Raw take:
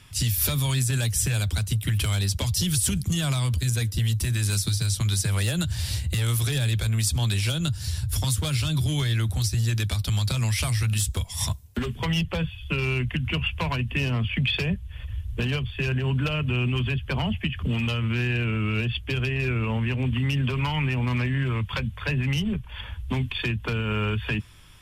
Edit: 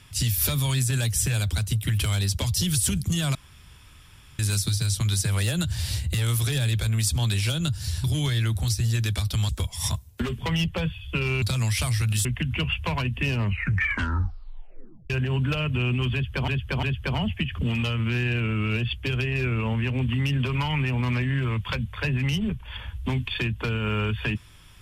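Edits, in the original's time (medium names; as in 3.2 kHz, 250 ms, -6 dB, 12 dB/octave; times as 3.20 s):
3.35–4.39 s: room tone
8.04–8.78 s: delete
10.23–11.06 s: move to 12.99 s
14.03 s: tape stop 1.81 s
16.87–17.22 s: loop, 3 plays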